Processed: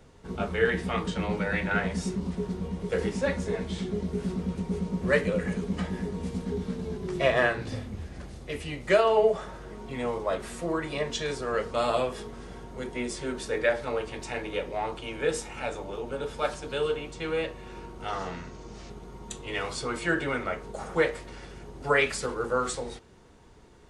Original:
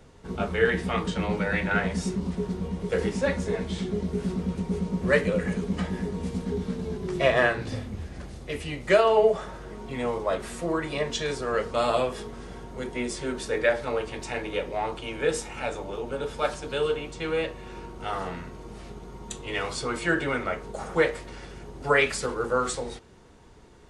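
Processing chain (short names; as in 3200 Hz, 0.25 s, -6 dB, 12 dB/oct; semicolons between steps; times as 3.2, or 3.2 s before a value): 18.08–18.9 synth low-pass 6200 Hz, resonance Q 2.2; gain -2 dB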